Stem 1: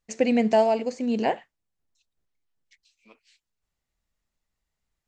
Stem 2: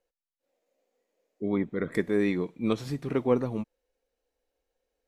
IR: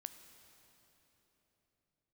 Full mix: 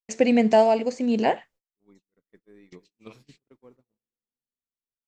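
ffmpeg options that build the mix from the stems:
-filter_complex "[0:a]volume=1.33,asplit=2[s0][s1];[1:a]adelay=350,volume=0.133,asplit=2[s2][s3];[s3]volume=0.335[s4];[s1]apad=whole_len=239111[s5];[s2][s5]sidechaingate=range=0.126:threshold=0.00126:ratio=16:detection=peak[s6];[2:a]atrim=start_sample=2205[s7];[s4][s7]afir=irnorm=-1:irlink=0[s8];[s0][s6][s8]amix=inputs=3:normalize=0,agate=range=0.0251:threshold=0.00224:ratio=16:detection=peak"

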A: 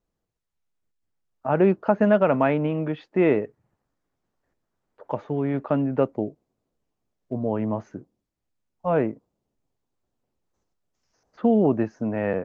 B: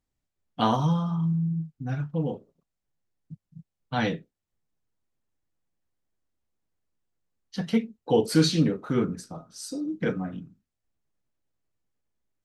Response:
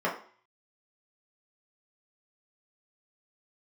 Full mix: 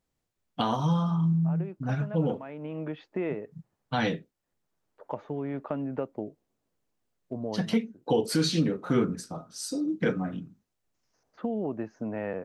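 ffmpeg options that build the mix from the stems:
-filter_complex "[0:a]acompressor=threshold=0.0562:ratio=3,volume=0.631[s0];[1:a]volume=1.33,asplit=2[s1][s2];[s2]apad=whole_len=548724[s3];[s0][s3]sidechaincompress=threshold=0.0224:ratio=10:attack=5.9:release=606[s4];[s4][s1]amix=inputs=2:normalize=0,lowshelf=f=97:g=-6.5,alimiter=limit=0.178:level=0:latency=1:release=281"

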